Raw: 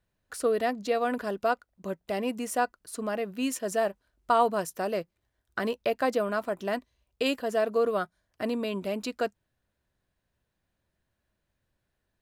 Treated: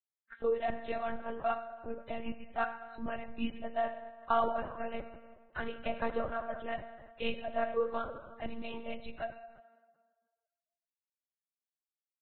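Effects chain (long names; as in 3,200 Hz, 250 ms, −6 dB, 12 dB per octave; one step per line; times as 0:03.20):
noise reduction from a noise print of the clip's start 16 dB
high-pass filter 70 Hz 6 dB per octave
reverb reduction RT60 1.5 s
0:02.39–0:03.39: low shelf with overshoot 220 Hz +8 dB, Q 3
dense smooth reverb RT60 1.6 s, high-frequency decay 0.65×, DRR 6.5 dB
one-pitch LPC vocoder at 8 kHz 230 Hz
level −6 dB
Ogg Vorbis 16 kbit/s 22,050 Hz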